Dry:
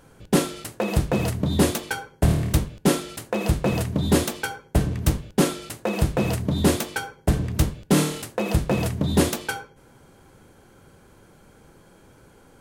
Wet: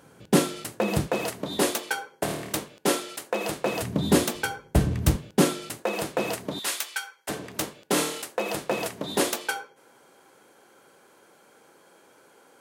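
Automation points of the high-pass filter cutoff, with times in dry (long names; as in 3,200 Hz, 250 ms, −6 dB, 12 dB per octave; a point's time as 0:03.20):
130 Hz
from 0:01.08 380 Hz
from 0:03.82 150 Hz
from 0:04.35 46 Hz
from 0:05.16 140 Hz
from 0:05.82 370 Hz
from 0:06.59 1,400 Hz
from 0:07.29 410 Hz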